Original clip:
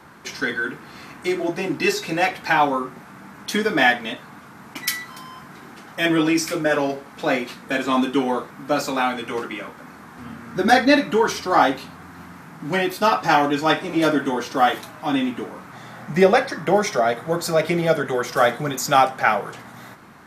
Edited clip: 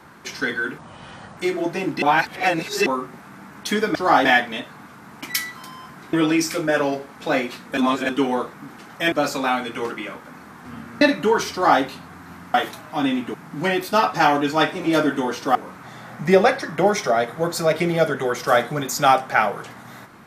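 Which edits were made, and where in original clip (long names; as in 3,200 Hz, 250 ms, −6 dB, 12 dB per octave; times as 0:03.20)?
0:00.78–0:01.20: play speed 71%
0:01.85–0:02.69: reverse
0:05.66–0:06.10: move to 0:08.65
0:07.74–0:08.06: reverse
0:10.54–0:10.90: remove
0:11.41–0:11.71: duplicate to 0:03.78
0:14.64–0:15.44: move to 0:12.43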